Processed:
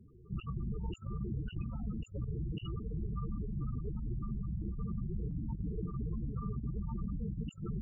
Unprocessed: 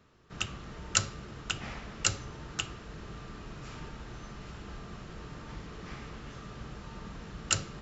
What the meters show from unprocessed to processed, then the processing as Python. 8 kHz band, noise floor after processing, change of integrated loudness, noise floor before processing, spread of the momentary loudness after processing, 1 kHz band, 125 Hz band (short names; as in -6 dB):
n/a, -56 dBFS, -2.5 dB, -47 dBFS, 2 LU, -10.0 dB, +6.0 dB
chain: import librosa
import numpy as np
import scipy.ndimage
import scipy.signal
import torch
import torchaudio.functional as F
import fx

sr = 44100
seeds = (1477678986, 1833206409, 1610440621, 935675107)

y = fx.spec_topn(x, sr, count=8)
y = fx.over_compress(y, sr, threshold_db=-45.0, ratio=-0.5)
y = y * 10.0 ** (8.0 / 20.0)